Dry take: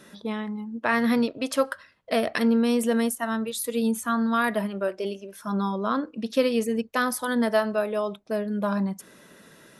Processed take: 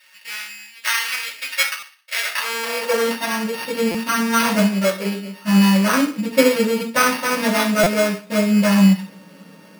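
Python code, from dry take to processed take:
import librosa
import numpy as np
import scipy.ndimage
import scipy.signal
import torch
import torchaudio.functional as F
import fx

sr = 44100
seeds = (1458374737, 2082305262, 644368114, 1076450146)

p1 = np.r_[np.sort(x[:len(x) // 16 * 16].reshape(-1, 16), axis=1).ravel(), x[len(x) // 16 * 16:]]
p2 = p1 + fx.echo_feedback(p1, sr, ms=66, feedback_pct=46, wet_db=-15.0, dry=0)
p3 = fx.rev_fdn(p2, sr, rt60_s=0.34, lf_ratio=1.1, hf_ratio=0.95, size_ms=32.0, drr_db=-8.5)
p4 = fx.dynamic_eq(p3, sr, hz=1300.0, q=1.1, threshold_db=-31.0, ratio=4.0, max_db=5)
p5 = np.repeat(p4[::6], 6)[:len(p4)]
p6 = fx.filter_sweep_highpass(p5, sr, from_hz=2000.0, to_hz=180.0, start_s=2.21, end_s=3.39, q=1.3)
p7 = fx.buffer_glitch(p6, sr, at_s=(1.79, 3.91, 7.83), block=256, repeats=5)
y = F.gain(torch.from_numpy(p7), -4.0).numpy()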